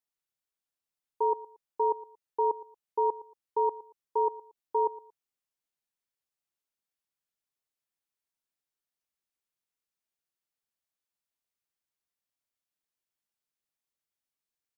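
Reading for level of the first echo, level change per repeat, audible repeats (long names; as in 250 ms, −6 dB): −18.0 dB, −11.5 dB, 2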